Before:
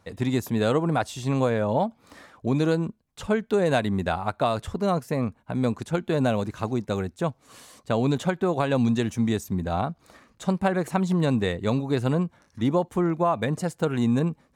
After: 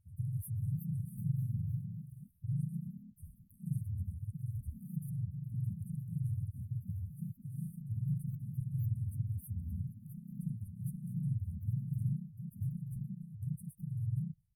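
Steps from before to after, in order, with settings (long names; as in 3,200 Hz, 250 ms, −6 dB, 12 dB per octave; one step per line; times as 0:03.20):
linear-phase brick-wall band-stop 160–10,000 Hz
delay with pitch and tempo change per echo 418 ms, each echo +2 semitones, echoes 2, each echo −6 dB
pitch-shifted copies added −3 semitones −4 dB, +3 semitones −7 dB
level −7.5 dB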